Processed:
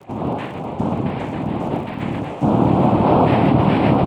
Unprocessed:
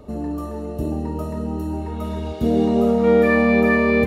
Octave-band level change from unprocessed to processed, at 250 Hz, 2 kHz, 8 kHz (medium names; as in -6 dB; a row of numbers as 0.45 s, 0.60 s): +1.5 dB, -7.5 dB, no reading